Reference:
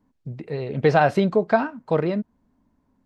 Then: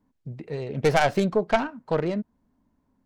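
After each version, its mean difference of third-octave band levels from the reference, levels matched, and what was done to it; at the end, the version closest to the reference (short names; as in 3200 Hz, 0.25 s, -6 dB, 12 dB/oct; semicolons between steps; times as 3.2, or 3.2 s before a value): 2.5 dB: tracing distortion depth 0.28 ms; gain -3 dB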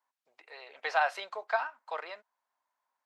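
11.0 dB: HPF 800 Hz 24 dB/oct; gain -5 dB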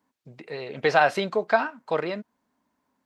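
4.5 dB: HPF 1200 Hz 6 dB/oct; gain +4 dB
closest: first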